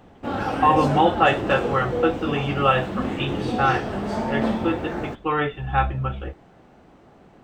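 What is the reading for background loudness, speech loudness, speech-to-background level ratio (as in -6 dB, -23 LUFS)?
-27.0 LUFS, -23.0 LUFS, 4.0 dB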